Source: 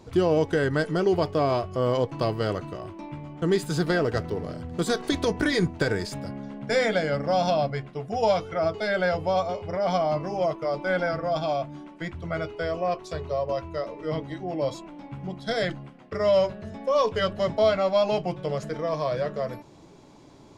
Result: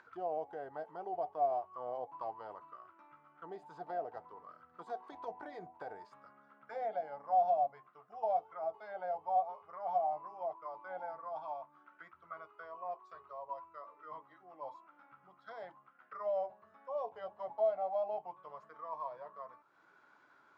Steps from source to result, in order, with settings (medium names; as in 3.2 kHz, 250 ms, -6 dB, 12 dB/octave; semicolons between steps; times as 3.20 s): upward compressor, threshold -30 dBFS; auto-wah 730–1600 Hz, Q 11, down, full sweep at -19.5 dBFS; trim -1 dB